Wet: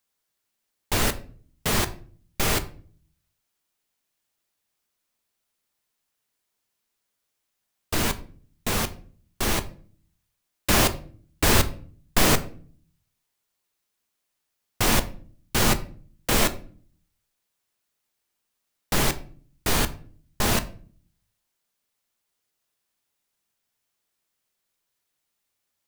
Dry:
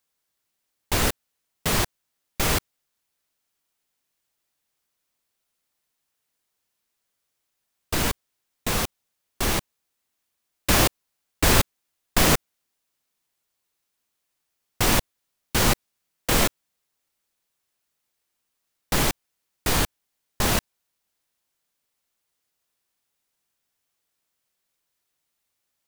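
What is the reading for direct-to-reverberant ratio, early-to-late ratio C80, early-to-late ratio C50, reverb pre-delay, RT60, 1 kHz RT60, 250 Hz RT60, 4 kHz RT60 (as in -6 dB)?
9.5 dB, 20.5 dB, 16.5 dB, 5 ms, 0.45 s, 0.40 s, 0.75 s, 0.30 s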